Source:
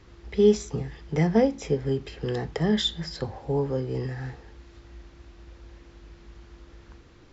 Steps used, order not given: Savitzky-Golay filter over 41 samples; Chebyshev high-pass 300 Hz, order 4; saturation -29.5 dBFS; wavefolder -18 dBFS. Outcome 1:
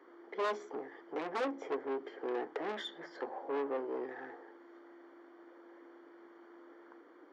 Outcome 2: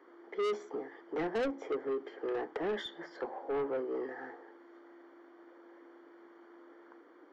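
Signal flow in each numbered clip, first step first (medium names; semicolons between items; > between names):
Savitzky-Golay filter > wavefolder > saturation > Chebyshev high-pass; Chebyshev high-pass > wavefolder > Savitzky-Golay filter > saturation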